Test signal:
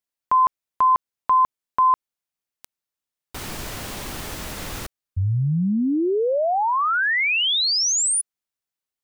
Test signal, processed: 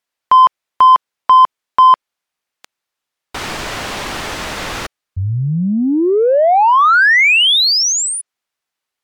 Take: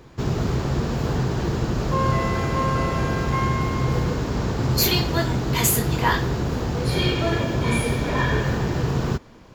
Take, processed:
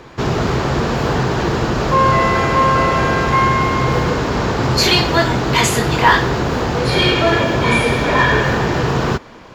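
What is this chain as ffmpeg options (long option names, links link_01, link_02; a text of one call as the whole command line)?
ffmpeg -i in.wav -filter_complex "[0:a]asplit=2[link_01][link_02];[link_02]highpass=frequency=720:poles=1,volume=10dB,asoftclip=type=tanh:threshold=-5.5dB[link_03];[link_01][link_03]amix=inputs=2:normalize=0,lowpass=frequency=3000:poles=1,volume=-6dB,acrossover=split=9400[link_04][link_05];[link_05]acompressor=threshold=-51dB:ratio=4:attack=1:release=60[link_06];[link_04][link_06]amix=inputs=2:normalize=0,asplit=2[link_07][link_08];[link_08]asoftclip=type=tanh:threshold=-18.5dB,volume=-9dB[link_09];[link_07][link_09]amix=inputs=2:normalize=0,volume=6dB" -ar 48000 -c:a libmp3lame -b:a 128k out.mp3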